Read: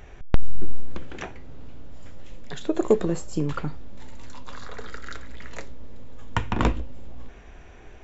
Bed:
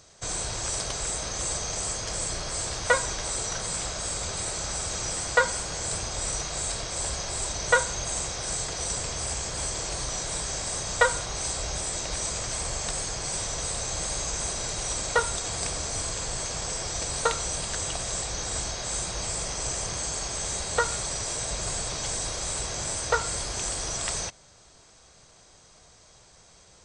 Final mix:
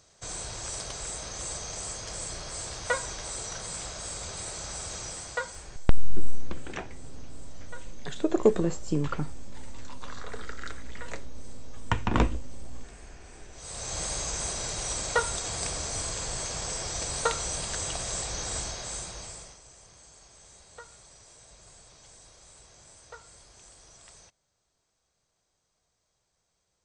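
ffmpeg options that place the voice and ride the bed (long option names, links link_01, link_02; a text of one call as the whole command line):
ffmpeg -i stem1.wav -i stem2.wav -filter_complex "[0:a]adelay=5550,volume=-1.5dB[link_01];[1:a]volume=17dB,afade=type=out:start_time=4.94:duration=0.92:silence=0.112202,afade=type=in:start_time=13.52:duration=0.47:silence=0.0707946,afade=type=out:start_time=18.51:duration=1.1:silence=0.0944061[link_02];[link_01][link_02]amix=inputs=2:normalize=0" out.wav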